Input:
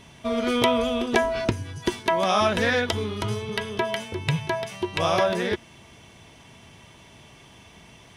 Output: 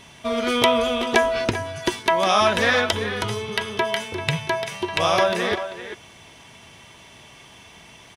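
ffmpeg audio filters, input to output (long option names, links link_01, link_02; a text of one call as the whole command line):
ffmpeg -i in.wav -filter_complex "[0:a]lowshelf=frequency=490:gain=-7,asplit=2[link_01][link_02];[link_02]adelay=390,highpass=300,lowpass=3400,asoftclip=type=hard:threshold=-15dB,volume=-10dB[link_03];[link_01][link_03]amix=inputs=2:normalize=0,volume=5dB" out.wav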